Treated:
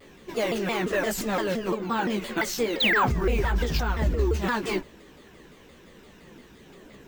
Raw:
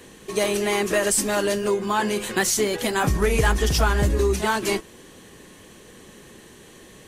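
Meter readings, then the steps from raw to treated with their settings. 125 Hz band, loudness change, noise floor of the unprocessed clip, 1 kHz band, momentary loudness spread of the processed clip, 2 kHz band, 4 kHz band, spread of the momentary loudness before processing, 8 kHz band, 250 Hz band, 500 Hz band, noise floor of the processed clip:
-3.5 dB, -4.0 dB, -48 dBFS, -3.0 dB, 7 LU, -2.0 dB, -2.5 dB, 4 LU, -13.0 dB, -2.0 dB, -5.0 dB, -52 dBFS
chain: chorus voices 6, 1.2 Hz, delay 16 ms, depth 3 ms; bell 11000 Hz -13 dB 1.3 oct; limiter -15.5 dBFS, peak gain reduction 7 dB; painted sound fall, 2.8–3.06, 830–4000 Hz -22 dBFS; notches 60/120 Hz; careless resampling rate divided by 2×, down filtered, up hold; shaped vibrato saw down 5.8 Hz, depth 250 cents

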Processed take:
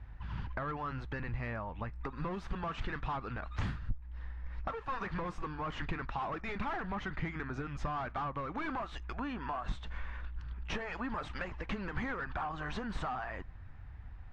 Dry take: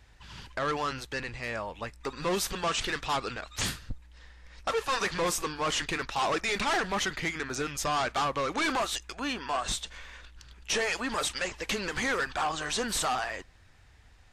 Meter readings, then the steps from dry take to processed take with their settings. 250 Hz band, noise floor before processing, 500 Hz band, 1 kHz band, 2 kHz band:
-4.0 dB, -57 dBFS, -10.5 dB, -7.5 dB, -9.5 dB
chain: LPF 1000 Hz 12 dB/oct; compressor 4:1, threshold -41 dBFS, peak gain reduction 12 dB; bell 470 Hz -13 dB 1.8 oct; gain +11 dB

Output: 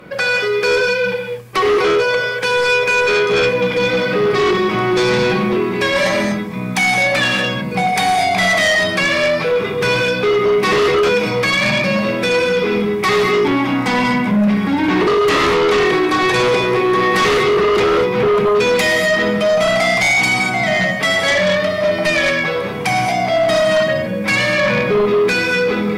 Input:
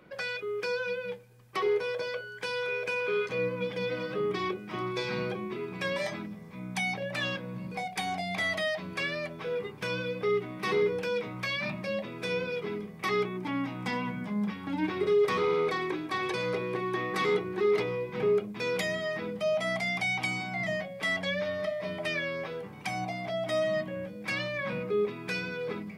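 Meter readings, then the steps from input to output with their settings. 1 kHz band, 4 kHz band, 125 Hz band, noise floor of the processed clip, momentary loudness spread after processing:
+18.0 dB, +18.0 dB, +15.0 dB, -22 dBFS, 4 LU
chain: non-linear reverb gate 0.27 s flat, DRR 0 dB; sine folder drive 8 dB, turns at -15.5 dBFS; gain +5 dB

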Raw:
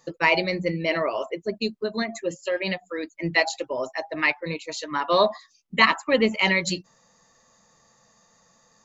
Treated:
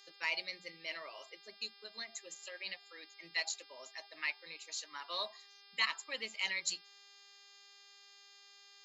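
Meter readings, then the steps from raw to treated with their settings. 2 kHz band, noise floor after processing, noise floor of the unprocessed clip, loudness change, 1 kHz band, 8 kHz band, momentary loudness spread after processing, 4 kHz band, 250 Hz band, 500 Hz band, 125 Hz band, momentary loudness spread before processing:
-15.0 dB, -61 dBFS, -62 dBFS, -15.5 dB, -21.0 dB, n/a, 22 LU, -10.0 dB, -33.0 dB, -26.5 dB, under -35 dB, 11 LU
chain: buzz 400 Hz, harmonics 13, -46 dBFS -3 dB/oct; differentiator; gain -4.5 dB

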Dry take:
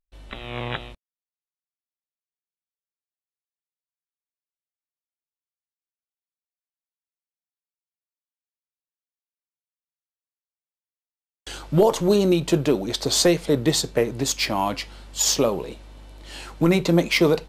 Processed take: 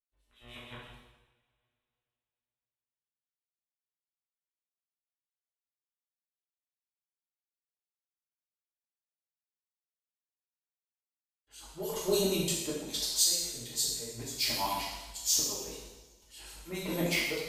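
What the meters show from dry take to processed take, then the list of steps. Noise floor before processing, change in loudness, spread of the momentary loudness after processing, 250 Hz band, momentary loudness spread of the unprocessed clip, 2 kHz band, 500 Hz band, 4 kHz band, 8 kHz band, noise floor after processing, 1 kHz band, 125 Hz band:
under -85 dBFS, -9.5 dB, 21 LU, -16.5 dB, 19 LU, -9.5 dB, -15.0 dB, -6.0 dB, -4.0 dB, under -85 dBFS, -11.5 dB, -16.5 dB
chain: gate with hold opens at -34 dBFS; auto swell 0.305 s; pre-emphasis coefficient 0.8; harmonic tremolo 6.7 Hz, depth 100%, crossover 2200 Hz; two-slope reverb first 1 s, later 3.2 s, from -26 dB, DRR -7.5 dB

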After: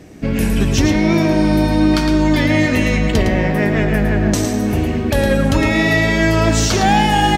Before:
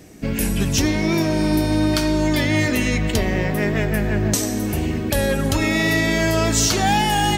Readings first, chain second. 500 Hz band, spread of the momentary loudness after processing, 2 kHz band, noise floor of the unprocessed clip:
+4.5 dB, 4 LU, +4.0 dB, -24 dBFS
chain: LPF 3100 Hz 6 dB/oct; on a send: echo 0.11 s -7 dB; on the sum: gain +4.5 dB

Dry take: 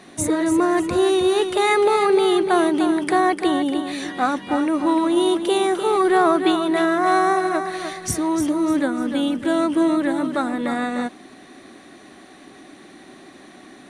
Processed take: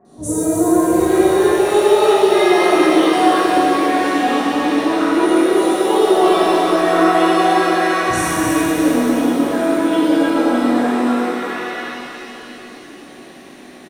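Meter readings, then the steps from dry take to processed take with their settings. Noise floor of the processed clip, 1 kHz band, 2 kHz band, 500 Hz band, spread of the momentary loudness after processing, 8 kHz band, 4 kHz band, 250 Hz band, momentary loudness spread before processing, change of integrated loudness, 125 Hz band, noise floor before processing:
-38 dBFS, +5.0 dB, +5.5 dB, +5.5 dB, 9 LU, +5.0 dB, +5.0 dB, +5.0 dB, 7 LU, +5.0 dB, +6.5 dB, -45 dBFS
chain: three bands offset in time lows, highs, mids 50/700 ms, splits 1100/4300 Hz; shimmer reverb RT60 3.4 s, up +7 st, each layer -8 dB, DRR -12 dB; gain -7 dB

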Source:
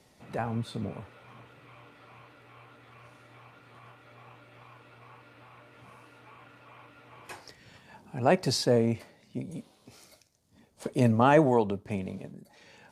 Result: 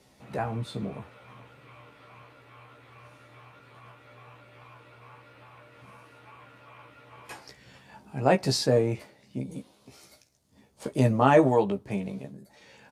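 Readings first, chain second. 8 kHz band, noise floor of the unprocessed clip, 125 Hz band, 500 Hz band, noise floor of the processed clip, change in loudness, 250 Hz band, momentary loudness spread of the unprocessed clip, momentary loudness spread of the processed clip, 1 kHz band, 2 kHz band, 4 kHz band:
+1.5 dB, -63 dBFS, +2.0 dB, +2.0 dB, -61 dBFS, +1.5 dB, +0.5 dB, 24 LU, 24 LU, +1.5 dB, +1.0 dB, +1.5 dB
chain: doubler 15 ms -4.5 dB

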